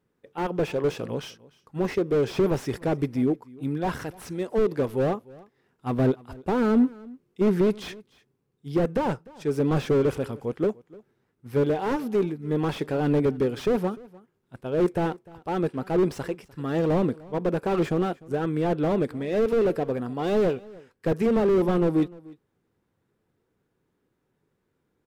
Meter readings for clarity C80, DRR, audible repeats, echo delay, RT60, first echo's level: no reverb audible, no reverb audible, 1, 300 ms, no reverb audible, −22.5 dB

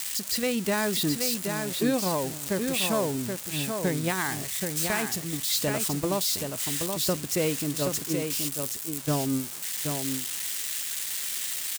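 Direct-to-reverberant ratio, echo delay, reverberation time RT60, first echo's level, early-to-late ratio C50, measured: no reverb audible, 776 ms, no reverb audible, −5.5 dB, no reverb audible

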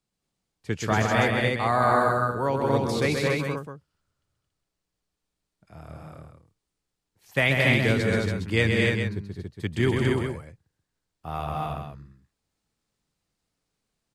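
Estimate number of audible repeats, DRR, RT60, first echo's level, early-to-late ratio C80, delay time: 4, no reverb audible, no reverb audible, −5.0 dB, no reverb audible, 131 ms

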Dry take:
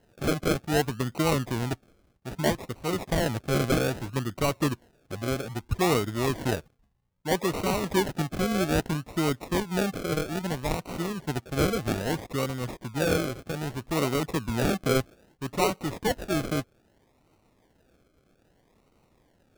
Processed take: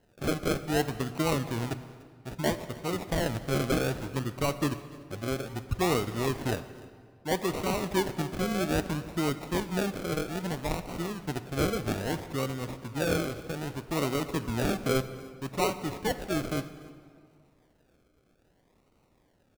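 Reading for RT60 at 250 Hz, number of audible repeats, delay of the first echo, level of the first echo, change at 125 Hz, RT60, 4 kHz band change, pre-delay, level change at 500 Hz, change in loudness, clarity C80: 2.1 s, 1, 294 ms, −22.5 dB, −3.0 dB, 2.0 s, −2.5 dB, 3 ms, −2.5 dB, −3.0 dB, 13.5 dB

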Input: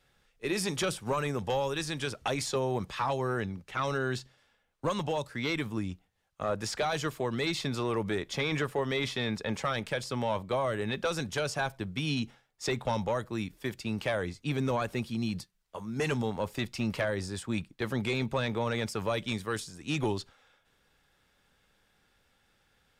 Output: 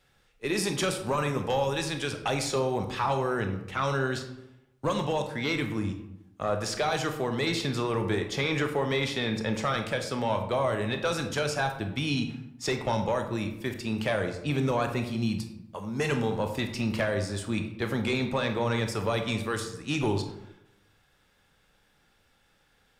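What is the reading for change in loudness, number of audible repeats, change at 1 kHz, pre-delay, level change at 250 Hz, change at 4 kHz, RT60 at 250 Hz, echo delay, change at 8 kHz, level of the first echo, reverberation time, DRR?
+3.0 dB, no echo audible, +3.5 dB, 22 ms, +3.5 dB, +2.5 dB, 0.95 s, no echo audible, +2.5 dB, no echo audible, 0.85 s, 5.5 dB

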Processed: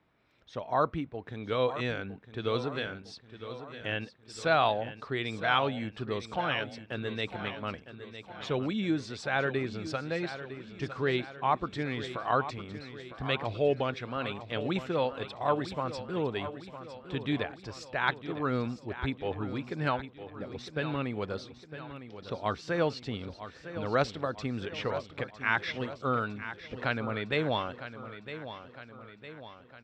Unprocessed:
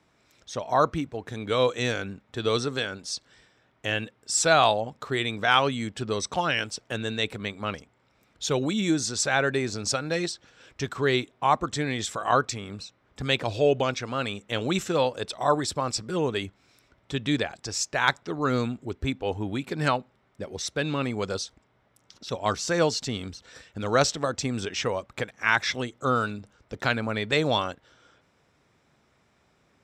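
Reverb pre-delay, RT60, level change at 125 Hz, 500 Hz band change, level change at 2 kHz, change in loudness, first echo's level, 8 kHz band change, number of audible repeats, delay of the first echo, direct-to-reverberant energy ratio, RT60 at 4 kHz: no reverb audible, no reverb audible, −4.5 dB, −5.0 dB, −5.5 dB, −6.0 dB, −12.0 dB, −22.5 dB, 5, 957 ms, no reverb audible, no reverb audible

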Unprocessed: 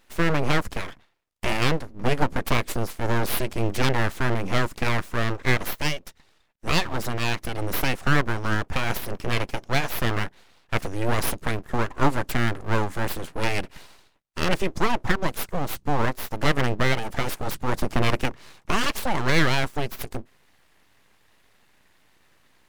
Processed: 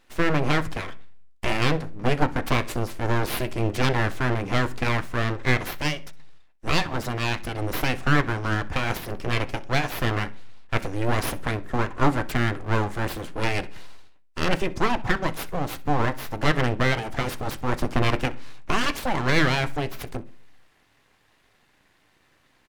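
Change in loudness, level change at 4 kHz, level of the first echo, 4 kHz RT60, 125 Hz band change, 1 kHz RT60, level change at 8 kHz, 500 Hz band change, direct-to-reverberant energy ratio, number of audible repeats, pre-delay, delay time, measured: +0.5 dB, −0.5 dB, −21.5 dB, 0.45 s, +1.0 dB, 0.40 s, −3.0 dB, 0.0 dB, 10.0 dB, 2, 3 ms, 63 ms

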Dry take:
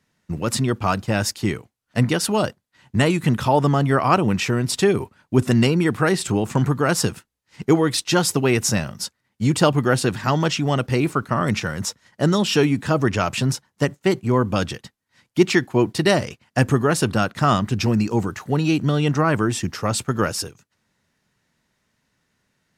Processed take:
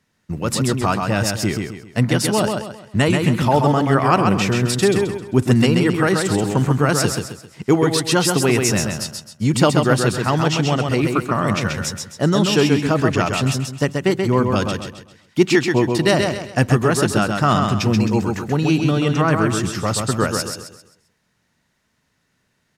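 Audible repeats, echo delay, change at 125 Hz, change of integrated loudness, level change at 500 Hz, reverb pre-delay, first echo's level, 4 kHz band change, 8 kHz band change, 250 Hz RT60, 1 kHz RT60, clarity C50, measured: 4, 132 ms, +2.5 dB, +2.5 dB, +2.5 dB, no reverb audible, −4.5 dB, +2.5 dB, +2.5 dB, no reverb audible, no reverb audible, no reverb audible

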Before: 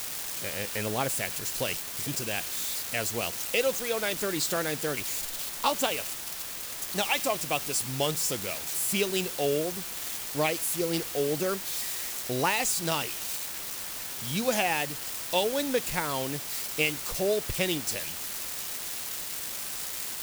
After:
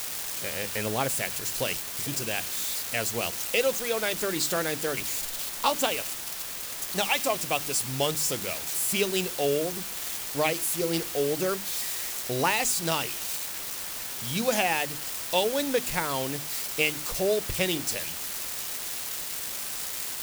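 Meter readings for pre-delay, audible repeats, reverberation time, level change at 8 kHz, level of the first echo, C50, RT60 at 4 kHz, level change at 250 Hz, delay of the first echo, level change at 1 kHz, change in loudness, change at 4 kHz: no reverb audible, no echo audible, no reverb audible, +1.5 dB, no echo audible, no reverb audible, no reverb audible, +0.5 dB, no echo audible, +1.5 dB, +1.5 dB, +1.5 dB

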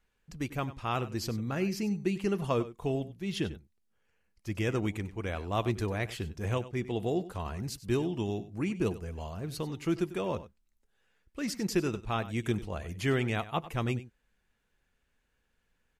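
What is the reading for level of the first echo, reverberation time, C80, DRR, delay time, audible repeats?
−15.5 dB, no reverb audible, no reverb audible, no reverb audible, 96 ms, 1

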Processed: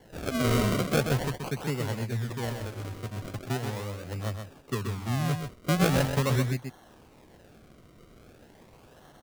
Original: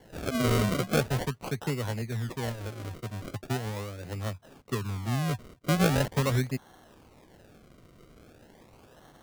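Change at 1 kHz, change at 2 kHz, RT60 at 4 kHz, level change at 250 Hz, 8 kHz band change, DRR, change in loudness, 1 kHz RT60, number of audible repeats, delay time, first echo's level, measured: +1.0 dB, +1.0 dB, no reverb audible, +1.0 dB, +1.0 dB, no reverb audible, +1.0 dB, no reverb audible, 1, 128 ms, −6.5 dB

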